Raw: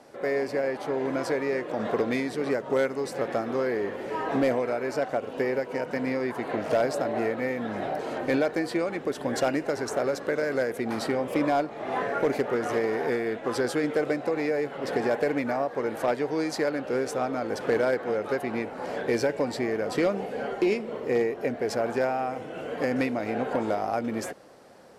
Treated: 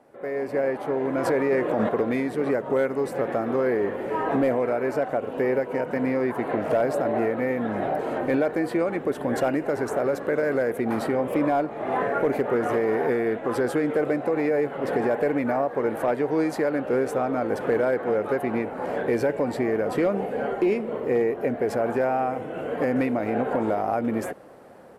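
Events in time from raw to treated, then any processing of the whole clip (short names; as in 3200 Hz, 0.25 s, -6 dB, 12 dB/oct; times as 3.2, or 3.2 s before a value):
1.18–1.89 gain +8 dB
whole clip: bell 5200 Hz -13.5 dB 1.6 oct; AGC gain up to 9 dB; limiter -10.5 dBFS; gain -4 dB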